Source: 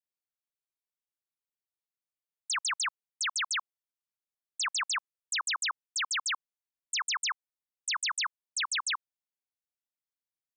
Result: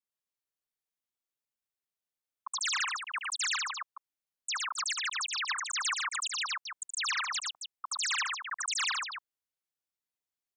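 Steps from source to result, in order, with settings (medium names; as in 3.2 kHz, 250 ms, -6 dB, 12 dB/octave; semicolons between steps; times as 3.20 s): slices played last to first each 112 ms, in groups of 2; loudspeakers at several distances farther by 25 m -7 dB, 40 m -2 dB, 92 m -7 dB; trim -3 dB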